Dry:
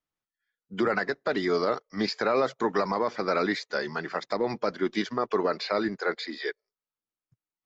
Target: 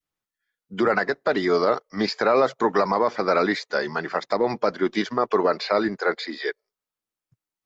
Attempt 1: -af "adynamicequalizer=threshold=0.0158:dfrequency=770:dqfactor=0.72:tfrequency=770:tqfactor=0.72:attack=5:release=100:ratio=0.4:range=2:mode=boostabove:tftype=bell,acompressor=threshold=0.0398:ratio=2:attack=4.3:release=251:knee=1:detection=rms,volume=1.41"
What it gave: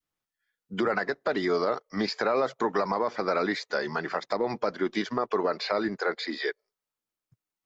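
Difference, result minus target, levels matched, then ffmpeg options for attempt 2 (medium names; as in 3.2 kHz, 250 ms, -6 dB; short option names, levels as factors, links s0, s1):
compression: peak gain reduction +7 dB
-af "adynamicequalizer=threshold=0.0158:dfrequency=770:dqfactor=0.72:tfrequency=770:tqfactor=0.72:attack=5:release=100:ratio=0.4:range=2:mode=boostabove:tftype=bell,volume=1.41"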